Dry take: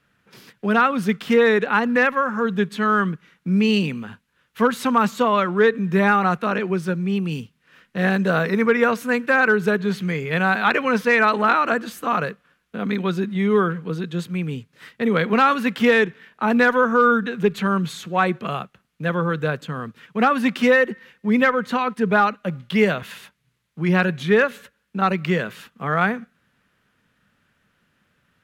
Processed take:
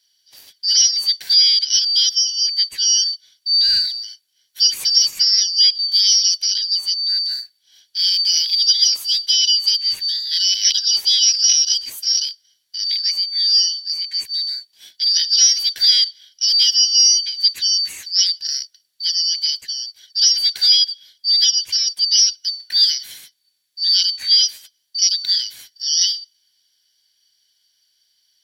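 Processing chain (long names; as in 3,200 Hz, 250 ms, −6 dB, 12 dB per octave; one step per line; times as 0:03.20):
band-splitting scrambler in four parts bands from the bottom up 4321
first-order pre-emphasis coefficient 0.8
level +6.5 dB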